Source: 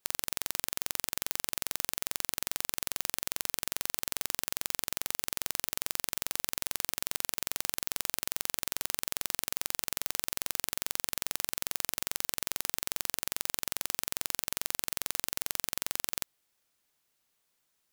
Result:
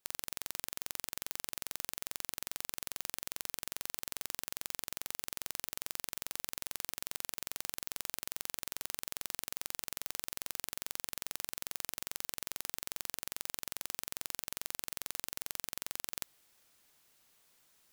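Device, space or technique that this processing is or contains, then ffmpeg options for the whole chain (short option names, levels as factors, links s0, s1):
compression on the reversed sound: -af "areverse,acompressor=threshold=0.01:ratio=10,areverse,volume=2.51"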